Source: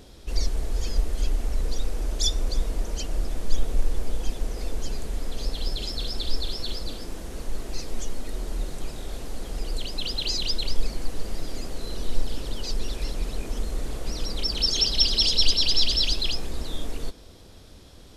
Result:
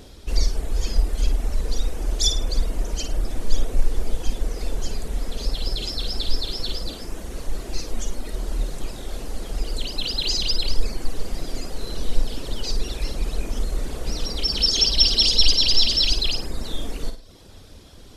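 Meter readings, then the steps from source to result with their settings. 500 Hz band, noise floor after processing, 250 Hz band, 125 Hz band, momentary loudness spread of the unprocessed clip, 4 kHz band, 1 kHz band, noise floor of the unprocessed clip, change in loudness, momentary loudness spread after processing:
+2.5 dB, -43 dBFS, +2.5 dB, +3.5 dB, 16 LU, +4.0 dB, +2.5 dB, -47 dBFS, +4.0 dB, 17 LU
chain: reverb removal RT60 0.71 s; on a send: flutter echo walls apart 9.1 m, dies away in 0.39 s; on the sum: trim +4 dB

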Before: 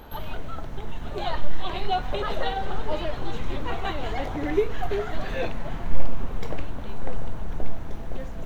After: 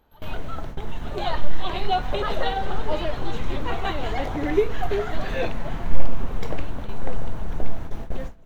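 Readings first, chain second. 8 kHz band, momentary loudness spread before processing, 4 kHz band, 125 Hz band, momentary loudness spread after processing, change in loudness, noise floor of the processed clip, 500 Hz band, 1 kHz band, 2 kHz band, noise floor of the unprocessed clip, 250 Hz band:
no reading, 10 LU, +2.5 dB, +2.5 dB, 10 LU, +2.5 dB, -35 dBFS, +2.5 dB, +2.5 dB, +2.5 dB, -32 dBFS, +2.5 dB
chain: gate with hold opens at -21 dBFS; trim +2.5 dB

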